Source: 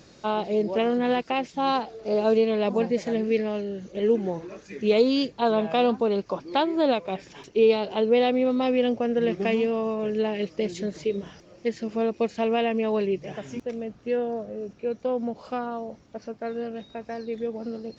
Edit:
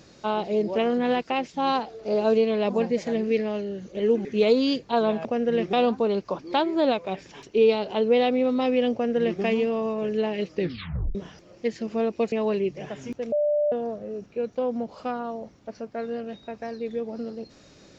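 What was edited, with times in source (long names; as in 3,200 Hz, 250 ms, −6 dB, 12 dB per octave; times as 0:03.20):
0:04.25–0:04.74: remove
0:08.94–0:09.42: duplicate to 0:05.74
0:10.56: tape stop 0.60 s
0:12.33–0:12.79: remove
0:13.79–0:14.19: beep over 592 Hz −19.5 dBFS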